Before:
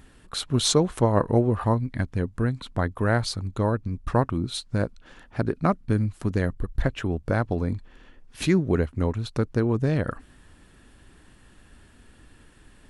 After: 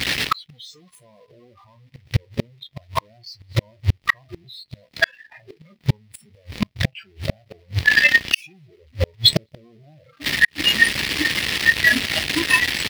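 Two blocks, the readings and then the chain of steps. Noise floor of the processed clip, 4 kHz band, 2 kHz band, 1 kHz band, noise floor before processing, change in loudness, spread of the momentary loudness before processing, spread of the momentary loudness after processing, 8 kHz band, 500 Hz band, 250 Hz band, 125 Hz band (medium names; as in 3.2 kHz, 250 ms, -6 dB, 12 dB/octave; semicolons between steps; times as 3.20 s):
-58 dBFS, +13.5 dB, +18.5 dB, -0.5 dB, -54 dBFS, +6.0 dB, 8 LU, 15 LU, +3.5 dB, -7.0 dB, -5.0 dB, -2.0 dB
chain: one-bit comparator; high-pass 86 Hz 12 dB/octave; dynamic bell 1.9 kHz, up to +5 dB, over -49 dBFS, Q 6.7; doubling 14 ms -13 dB; delay 206 ms -14 dB; modulation noise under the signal 16 dB; transient shaper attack +5 dB, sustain 0 dB; spectral noise reduction 22 dB; inverted gate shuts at -25 dBFS, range -40 dB; high-order bell 3.2 kHz +13 dB; loudness maximiser +20 dB; trim -1 dB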